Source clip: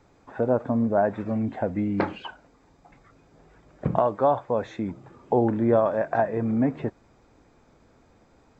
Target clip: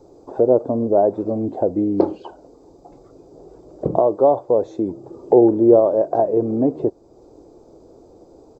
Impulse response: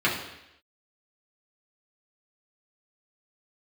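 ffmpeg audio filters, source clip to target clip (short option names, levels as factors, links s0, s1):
-filter_complex "[0:a]firequalizer=gain_entry='entry(230,0);entry(340,14);entry(1800,-21);entry(4600,1)':delay=0.05:min_phase=1,asplit=2[s0][s1];[s1]acompressor=threshold=0.0178:ratio=6,volume=1.06[s2];[s0][s2]amix=inputs=2:normalize=0,volume=0.841"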